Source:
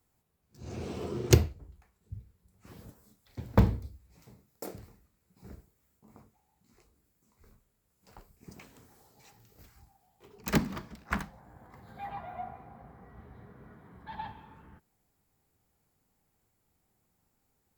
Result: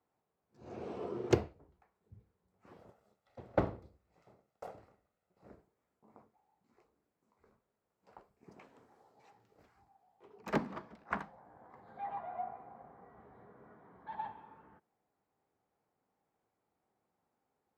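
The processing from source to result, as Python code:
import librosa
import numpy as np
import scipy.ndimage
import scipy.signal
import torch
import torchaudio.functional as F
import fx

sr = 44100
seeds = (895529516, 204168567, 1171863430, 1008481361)

y = fx.lower_of_two(x, sr, delay_ms=1.5, at=(2.77, 5.48))
y = fx.bandpass_q(y, sr, hz=690.0, q=0.8)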